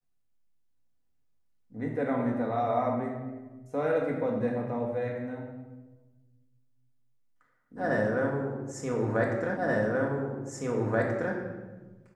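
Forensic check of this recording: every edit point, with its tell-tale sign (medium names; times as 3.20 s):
9.57 s: repeat of the last 1.78 s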